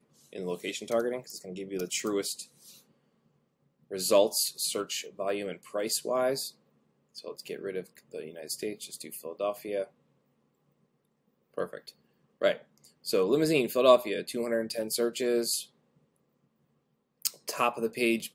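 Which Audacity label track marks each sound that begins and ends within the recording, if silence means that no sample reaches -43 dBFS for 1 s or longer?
3.910000	9.850000	sound
11.570000	15.640000	sound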